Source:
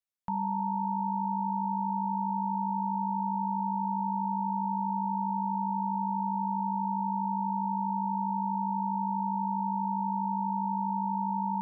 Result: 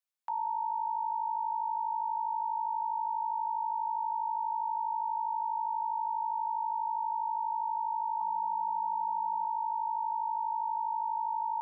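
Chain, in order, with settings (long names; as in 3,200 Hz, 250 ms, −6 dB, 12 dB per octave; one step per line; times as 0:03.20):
0:08.21–0:09.45: spectral tilt −4 dB per octave
high-pass filter 670 Hz 24 dB per octave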